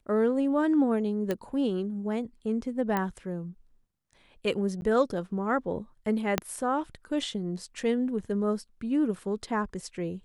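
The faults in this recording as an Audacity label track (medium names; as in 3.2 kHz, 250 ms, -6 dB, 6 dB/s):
1.310000	1.310000	pop -16 dBFS
2.970000	2.970000	pop -15 dBFS
4.810000	4.820000	dropout 11 ms
6.380000	6.380000	pop -9 dBFS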